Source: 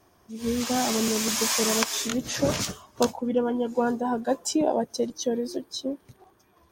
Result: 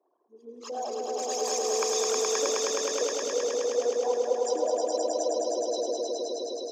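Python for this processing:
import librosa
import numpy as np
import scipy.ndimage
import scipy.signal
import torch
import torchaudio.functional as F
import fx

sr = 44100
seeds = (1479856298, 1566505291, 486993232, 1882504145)

y = fx.envelope_sharpen(x, sr, power=3.0)
y = scipy.signal.sosfilt(scipy.signal.butter(4, 380.0, 'highpass', fs=sr, output='sos'), y)
y = fx.echo_swell(y, sr, ms=105, loudest=5, wet_db=-3.0)
y = y * 10.0 ** (-8.0 / 20.0)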